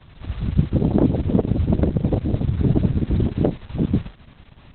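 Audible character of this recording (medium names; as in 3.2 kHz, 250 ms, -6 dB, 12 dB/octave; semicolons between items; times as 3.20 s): Opus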